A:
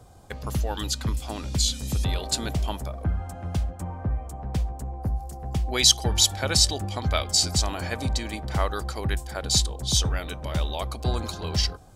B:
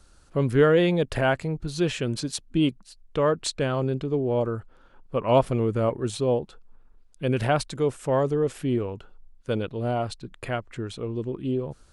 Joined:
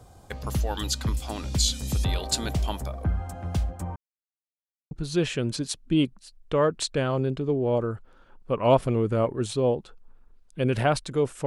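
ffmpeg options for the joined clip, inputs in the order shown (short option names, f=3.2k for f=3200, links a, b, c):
-filter_complex "[0:a]apad=whole_dur=11.46,atrim=end=11.46,asplit=2[a][b];[a]atrim=end=3.96,asetpts=PTS-STARTPTS,afade=t=out:st=3.956:d=0.004:c=hsin[c];[b]atrim=start=3.96:end=4.91,asetpts=PTS-STARTPTS,volume=0[d];[1:a]atrim=start=1.55:end=8.1,asetpts=PTS-STARTPTS,afade=t=in:d=0.004:c=hsin[e];[c][d][e]concat=n=3:v=0:a=1"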